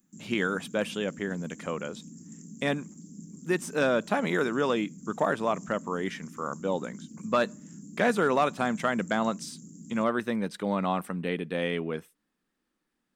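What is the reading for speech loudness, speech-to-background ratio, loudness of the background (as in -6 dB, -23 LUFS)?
-29.5 LUFS, 17.0 dB, -46.5 LUFS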